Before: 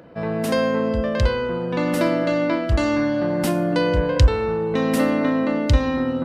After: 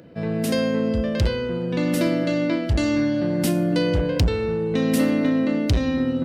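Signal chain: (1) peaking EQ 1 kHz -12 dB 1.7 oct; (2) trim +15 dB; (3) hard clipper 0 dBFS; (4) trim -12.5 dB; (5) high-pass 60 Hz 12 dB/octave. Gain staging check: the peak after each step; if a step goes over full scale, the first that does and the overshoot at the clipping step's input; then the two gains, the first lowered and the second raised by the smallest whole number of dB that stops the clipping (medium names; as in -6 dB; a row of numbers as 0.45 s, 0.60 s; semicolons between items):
-5.0 dBFS, +10.0 dBFS, 0.0 dBFS, -12.5 dBFS, -8.0 dBFS; step 2, 10.0 dB; step 2 +5 dB, step 4 -2.5 dB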